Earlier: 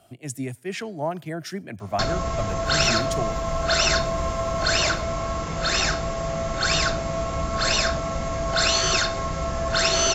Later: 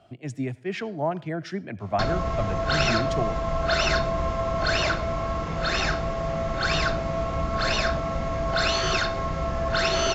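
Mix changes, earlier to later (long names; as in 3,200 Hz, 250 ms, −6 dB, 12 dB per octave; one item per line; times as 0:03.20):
speech: send +10.5 dB
master: add high-frequency loss of the air 160 metres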